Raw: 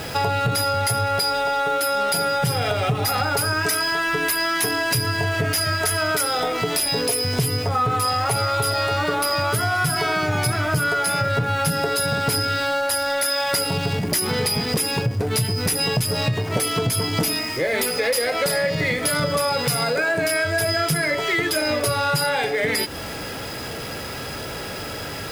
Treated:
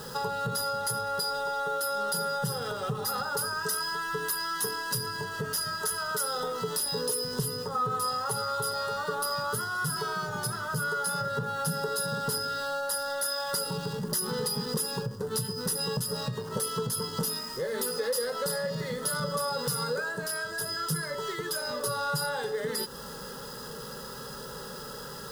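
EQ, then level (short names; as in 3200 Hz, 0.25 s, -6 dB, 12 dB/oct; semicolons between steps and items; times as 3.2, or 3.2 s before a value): fixed phaser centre 460 Hz, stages 8; -6.5 dB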